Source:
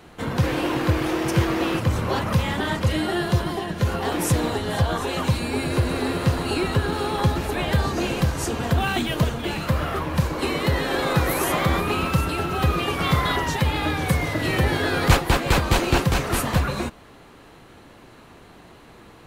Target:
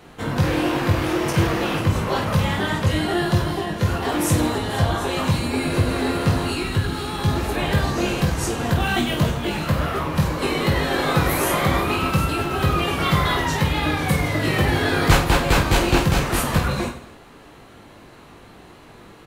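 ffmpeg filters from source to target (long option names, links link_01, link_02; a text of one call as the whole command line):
ffmpeg -i in.wav -filter_complex "[0:a]asettb=1/sr,asplit=3[link_01][link_02][link_03];[link_01]atrim=end=6.504[link_04];[link_02]atrim=start=6.5:end=7.28,asetpts=PTS-STARTPTS,afade=type=in:duration=0.004:curve=qsin,afade=type=out:start_time=0.776:duration=0.004:curve=qsin,equalizer=frequency=600:width=0.54:gain=-7.5[link_05];[link_03]atrim=start=7.276[link_06];[link_04][link_05]acrossfade=duration=0.004:curve1=hsin:curve2=qsin[link_07];[link_07][link_06]acrossfade=duration=0.004:curve1=qsin:curve2=hsin,aecho=1:1:20|50|95|162.5|263.8:0.631|0.398|0.251|0.158|0.1" out.wav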